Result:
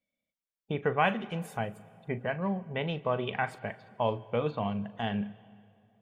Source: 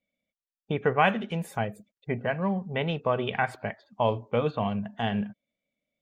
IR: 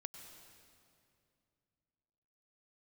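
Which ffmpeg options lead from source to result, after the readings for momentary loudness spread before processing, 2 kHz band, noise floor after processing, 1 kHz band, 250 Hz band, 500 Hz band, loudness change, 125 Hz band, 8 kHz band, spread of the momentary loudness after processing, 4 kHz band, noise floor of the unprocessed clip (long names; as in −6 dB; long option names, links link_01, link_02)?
10 LU, −4.0 dB, below −85 dBFS, −4.0 dB, −3.5 dB, −4.0 dB, −4.0 dB, −4.0 dB, can't be measured, 10 LU, −4.0 dB, below −85 dBFS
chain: -filter_complex "[0:a]asplit=2[link_01][link_02];[1:a]atrim=start_sample=2205,adelay=40[link_03];[link_02][link_03]afir=irnorm=-1:irlink=0,volume=-10dB[link_04];[link_01][link_04]amix=inputs=2:normalize=0,volume=-4dB"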